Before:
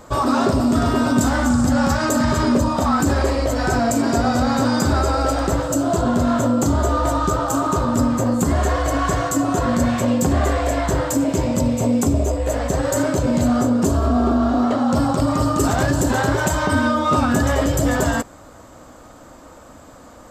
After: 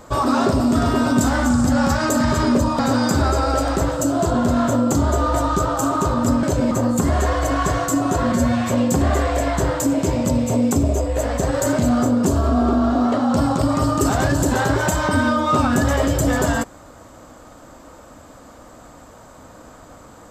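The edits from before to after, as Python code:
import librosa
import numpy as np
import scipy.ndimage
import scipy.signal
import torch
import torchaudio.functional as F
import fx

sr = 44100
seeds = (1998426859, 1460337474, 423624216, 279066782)

y = fx.edit(x, sr, fx.cut(start_s=2.79, length_s=1.71),
    fx.stretch_span(start_s=9.75, length_s=0.25, factor=1.5),
    fx.move(start_s=13.09, length_s=0.28, to_s=8.14), tone=tone)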